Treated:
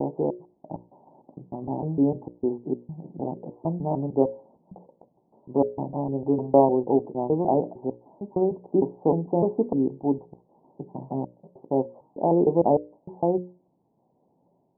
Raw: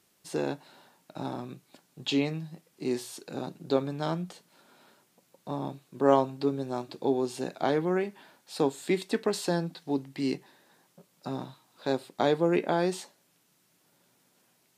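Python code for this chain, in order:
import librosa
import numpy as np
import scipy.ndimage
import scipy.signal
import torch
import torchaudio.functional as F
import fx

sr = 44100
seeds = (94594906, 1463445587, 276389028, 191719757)

y = fx.block_reorder(x, sr, ms=152.0, group=4)
y = scipy.signal.sosfilt(scipy.signal.butter(12, 930.0, 'lowpass', fs=sr, output='sos'), y)
y = fx.hum_notches(y, sr, base_hz=60, count=10)
y = F.gain(torch.from_numpy(y), 6.0).numpy()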